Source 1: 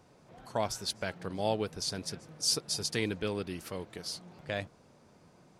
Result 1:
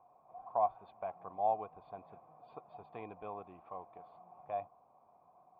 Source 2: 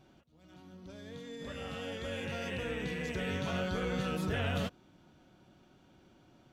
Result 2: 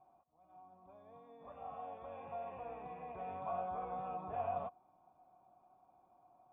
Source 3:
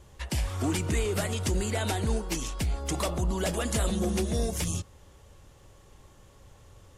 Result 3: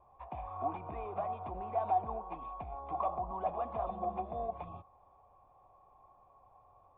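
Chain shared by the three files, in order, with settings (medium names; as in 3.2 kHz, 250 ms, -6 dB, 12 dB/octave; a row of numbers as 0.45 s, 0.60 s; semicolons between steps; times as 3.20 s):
cascade formant filter a; treble shelf 3.5 kHz +11.5 dB; trim +8.5 dB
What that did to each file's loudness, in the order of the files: -5.0 LU, -7.5 LU, -8.5 LU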